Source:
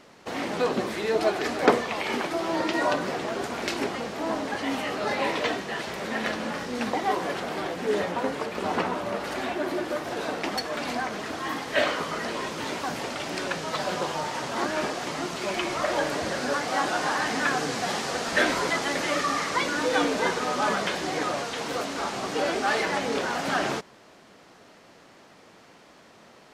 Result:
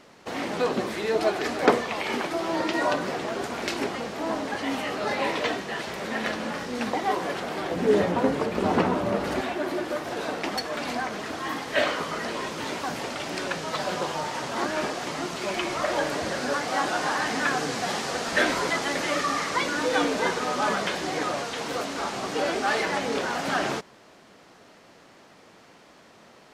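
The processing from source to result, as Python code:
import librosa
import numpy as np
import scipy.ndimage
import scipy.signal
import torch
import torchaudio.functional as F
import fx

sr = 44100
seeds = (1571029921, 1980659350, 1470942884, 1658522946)

y = fx.low_shelf(x, sr, hz=480.0, db=9.5, at=(7.71, 9.41))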